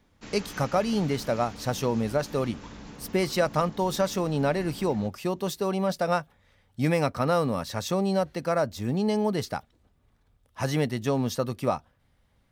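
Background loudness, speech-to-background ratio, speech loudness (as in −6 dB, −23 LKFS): −44.0 LKFS, 16.5 dB, −27.5 LKFS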